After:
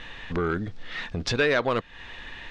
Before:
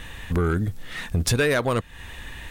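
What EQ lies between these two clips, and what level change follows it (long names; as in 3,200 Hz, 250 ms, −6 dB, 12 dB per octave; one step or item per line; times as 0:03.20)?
low-pass filter 5,100 Hz 24 dB per octave
parametric band 67 Hz −12 dB 2.6 octaves
0.0 dB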